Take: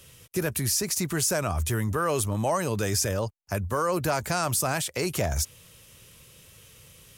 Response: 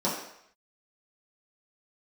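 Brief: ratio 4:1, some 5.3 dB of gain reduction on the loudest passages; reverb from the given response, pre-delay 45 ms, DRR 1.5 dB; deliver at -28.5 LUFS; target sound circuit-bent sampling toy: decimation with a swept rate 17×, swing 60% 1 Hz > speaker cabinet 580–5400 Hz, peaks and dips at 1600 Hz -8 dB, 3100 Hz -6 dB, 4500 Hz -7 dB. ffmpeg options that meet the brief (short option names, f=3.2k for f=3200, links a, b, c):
-filter_complex "[0:a]acompressor=threshold=-28dB:ratio=4,asplit=2[a][b];[1:a]atrim=start_sample=2205,adelay=45[c];[b][c]afir=irnorm=-1:irlink=0,volume=-12.5dB[d];[a][d]amix=inputs=2:normalize=0,acrusher=samples=17:mix=1:aa=0.000001:lfo=1:lforange=10.2:lforate=1,highpass=580,equalizer=f=1.6k:t=q:w=4:g=-8,equalizer=f=3.1k:t=q:w=4:g=-6,equalizer=f=4.5k:t=q:w=4:g=-7,lowpass=f=5.4k:w=0.5412,lowpass=f=5.4k:w=1.3066,volume=6dB"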